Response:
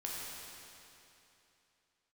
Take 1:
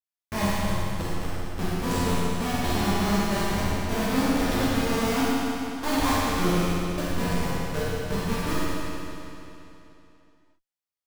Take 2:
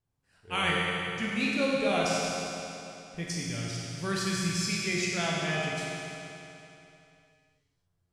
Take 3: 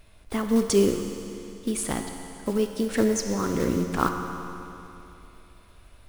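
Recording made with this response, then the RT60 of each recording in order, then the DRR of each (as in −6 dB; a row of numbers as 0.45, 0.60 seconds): 2; 2.9, 2.9, 3.0 seconds; −10.5, −4.5, 4.5 decibels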